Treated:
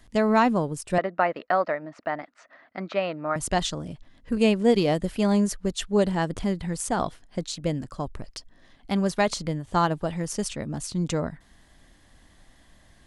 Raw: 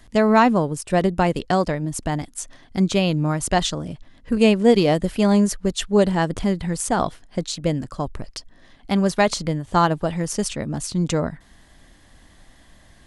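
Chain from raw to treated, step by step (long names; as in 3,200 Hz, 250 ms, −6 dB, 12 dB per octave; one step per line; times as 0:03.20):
0:00.98–0:03.36: loudspeaker in its box 370–3,600 Hz, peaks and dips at 400 Hz −5 dB, 630 Hz +8 dB, 1,300 Hz +9 dB, 1,900 Hz +6 dB, 3,300 Hz −10 dB
level −5 dB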